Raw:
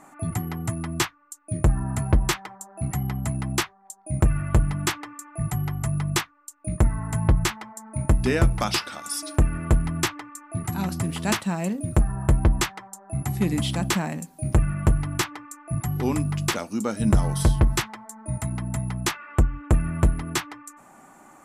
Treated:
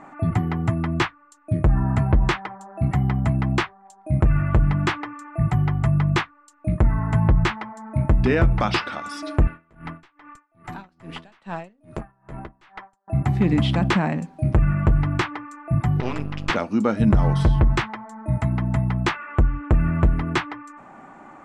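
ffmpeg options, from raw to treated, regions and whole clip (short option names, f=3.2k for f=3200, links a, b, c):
-filter_complex "[0:a]asettb=1/sr,asplit=3[a][b][c];[a]atrim=end=9.474[d];[b]atrim=start=9.47:end=13.08,asetpts=PTS-STARTPTS,afade=t=in:d=0.004:c=qsin,afade=t=out:st=3.606:d=0.004:c=qsin,highpass=f=560:p=1,aeval=exprs='(tanh(20*val(0)+0.45)-tanh(0.45))/20':c=same,aeval=exprs='val(0)*pow(10,-30*(0.5-0.5*cos(2*PI*2.4*n/s))/20)':c=same[e];[c]atrim=start=13.076[f];[d][e]acrossfade=d=0.004:c1=hsin:c2=qsin[g];[g][f]acrossfade=d=0.004:c1=qsin:c2=hsin,asettb=1/sr,asplit=3[h][i][j];[h]atrim=end=16.004[k];[i]atrim=start=16:end=16.5,asetpts=PTS-STARTPTS,afade=t=in:d=0.004:c=qsin,afade=t=out:st=0.496:d=0.004:c=qsin,lowpass=5.8k,tiltshelf=f=1.4k:g=-7,aeval=exprs='max(val(0),0)':c=same[l];[j]atrim=start=16.496[m];[k][l]acrossfade=d=0.004:c1=hsin:c2=qsin[n];[n][m]acrossfade=d=0.004:c1=qsin:c2=hsin,lowpass=2.7k,alimiter=level_in=15dB:limit=-1dB:release=50:level=0:latency=1,volume=-8.5dB"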